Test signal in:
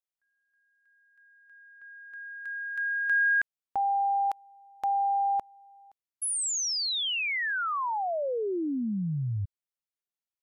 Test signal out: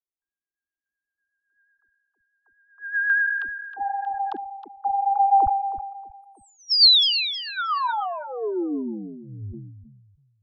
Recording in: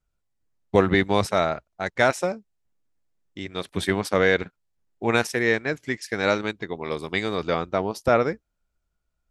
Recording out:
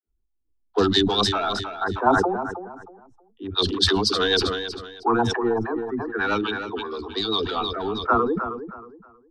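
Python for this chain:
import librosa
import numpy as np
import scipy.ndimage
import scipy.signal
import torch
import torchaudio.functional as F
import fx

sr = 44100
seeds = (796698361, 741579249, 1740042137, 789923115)

p1 = 10.0 ** (-20.0 / 20.0) * (np.abs((x / 10.0 ** (-20.0 / 20.0) + 3.0) % 4.0 - 2.0) - 1.0)
p2 = x + F.gain(torch.from_numpy(p1), -10.0).numpy()
p3 = fx.high_shelf(p2, sr, hz=2600.0, db=9.0)
p4 = fx.dispersion(p3, sr, late='lows', ms=72.0, hz=310.0)
p5 = fx.filter_lfo_lowpass(p4, sr, shape='sine', hz=0.32, low_hz=850.0, high_hz=4600.0, q=3.1)
p6 = fx.fixed_phaser(p5, sr, hz=570.0, stages=6)
p7 = fx.rotary(p6, sr, hz=8.0)
p8 = fx.env_lowpass(p7, sr, base_hz=470.0, full_db=-20.0)
p9 = fx.dereverb_blind(p8, sr, rt60_s=1.8)
p10 = p9 + fx.echo_feedback(p9, sr, ms=316, feedback_pct=26, wet_db=-11.5, dry=0)
p11 = fx.sustainer(p10, sr, db_per_s=41.0)
y = F.gain(torch.from_numpy(p11), 3.0).numpy()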